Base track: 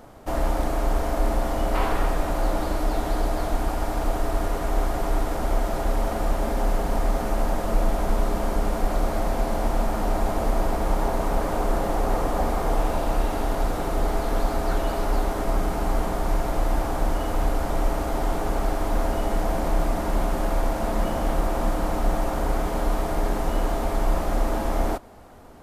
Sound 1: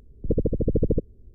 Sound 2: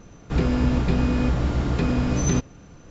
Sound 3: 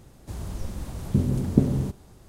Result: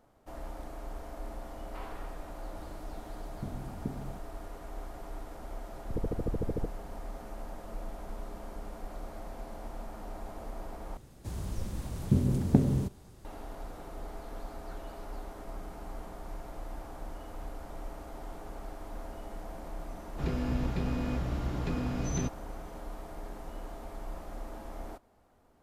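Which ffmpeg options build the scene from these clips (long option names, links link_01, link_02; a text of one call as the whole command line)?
ffmpeg -i bed.wav -i cue0.wav -i cue1.wav -i cue2.wav -filter_complex "[3:a]asplit=2[link_01][link_02];[0:a]volume=-18.5dB[link_03];[1:a]alimiter=limit=-20dB:level=0:latency=1:release=71[link_04];[link_02]volume=6.5dB,asoftclip=hard,volume=-6.5dB[link_05];[link_03]asplit=2[link_06][link_07];[link_06]atrim=end=10.974[link_08];[link_05]atrim=end=2.28,asetpts=PTS-STARTPTS,volume=-3dB[link_09];[link_07]atrim=start=13.246[link_10];[link_01]atrim=end=2.28,asetpts=PTS-STARTPTS,volume=-18dB,afade=type=in:duration=0.004:curve=hsin,afade=type=out:start_time=2.276:duration=0.004:curve=hsin,adelay=2280[link_11];[link_04]atrim=end=1.34,asetpts=PTS-STARTPTS,volume=-5dB,afade=type=in:duration=0.004:curve=hsin,afade=type=out:start_time=1.336:duration=0.004:curve=hsin,adelay=5660[link_12];[2:a]atrim=end=2.9,asetpts=PTS-STARTPTS,volume=-11dB,afade=type=in:duration=0.004:curve=hsin,afade=type=out:start_time=2.896:duration=0.004:curve=hsin,adelay=876708S[link_13];[link_08][link_09]acrossfade=duration=0.004:curve1=hsin:curve2=hsin[link_14];[link_14][link_10]acrossfade=duration=0.004:curve1=hsin:curve2=hsin[link_15];[link_15][link_11][link_12][link_13]amix=inputs=4:normalize=0" out.wav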